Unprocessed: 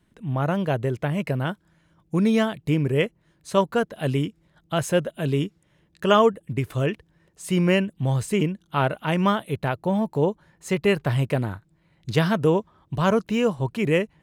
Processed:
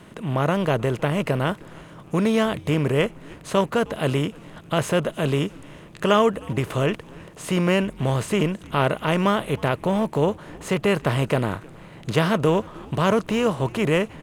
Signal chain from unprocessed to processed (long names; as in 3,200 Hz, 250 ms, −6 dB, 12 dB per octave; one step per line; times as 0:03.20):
compressor on every frequency bin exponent 0.6
echo with shifted repeats 311 ms, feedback 50%, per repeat −130 Hz, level −23 dB
level −2.5 dB